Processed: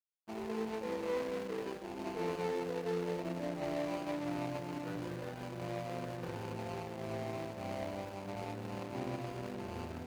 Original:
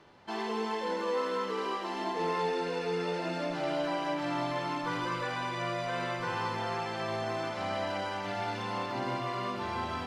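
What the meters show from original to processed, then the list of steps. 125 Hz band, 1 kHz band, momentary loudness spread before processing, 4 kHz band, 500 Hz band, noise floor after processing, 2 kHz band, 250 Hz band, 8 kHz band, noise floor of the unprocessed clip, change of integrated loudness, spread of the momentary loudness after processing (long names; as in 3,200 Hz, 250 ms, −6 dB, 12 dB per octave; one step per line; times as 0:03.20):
−2.5 dB, −11.0 dB, 3 LU, −11.5 dB, −5.0 dB, −45 dBFS, −11.0 dB, −3.0 dB, −5.0 dB, −37 dBFS, −6.5 dB, 6 LU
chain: running median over 41 samples
dead-zone distortion −52.5 dBFS
high-pass filter 49 Hz
level −1 dB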